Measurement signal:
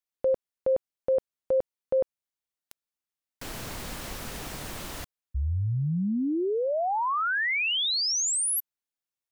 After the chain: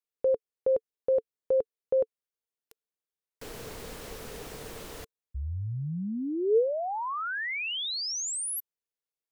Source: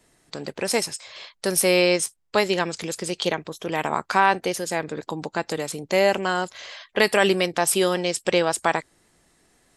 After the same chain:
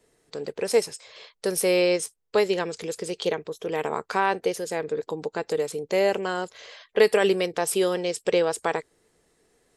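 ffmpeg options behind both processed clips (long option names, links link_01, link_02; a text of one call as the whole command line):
ffmpeg -i in.wav -af "equalizer=frequency=450:width=3.8:gain=13,volume=-6dB" out.wav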